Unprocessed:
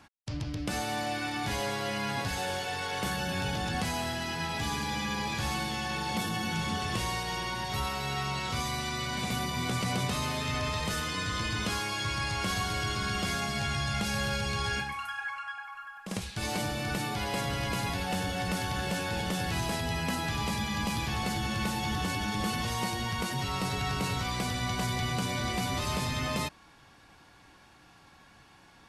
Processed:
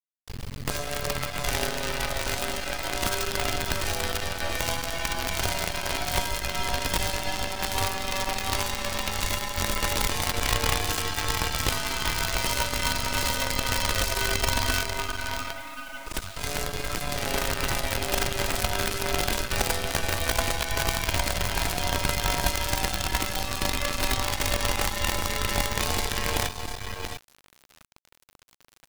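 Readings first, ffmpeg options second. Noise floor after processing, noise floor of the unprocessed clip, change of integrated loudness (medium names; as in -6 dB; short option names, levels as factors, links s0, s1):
-58 dBFS, -57 dBFS, +4.5 dB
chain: -af "afreqshift=-160,aecho=1:1:683:0.631,acrusher=bits=5:dc=4:mix=0:aa=0.000001,volume=1.68"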